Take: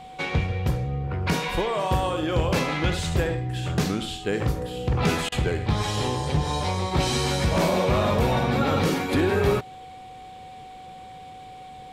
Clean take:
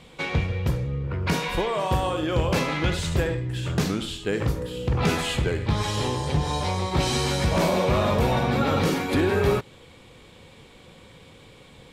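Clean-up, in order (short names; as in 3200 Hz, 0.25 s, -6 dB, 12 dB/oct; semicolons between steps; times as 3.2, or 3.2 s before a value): notch 750 Hz, Q 30; interpolate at 5.29, 29 ms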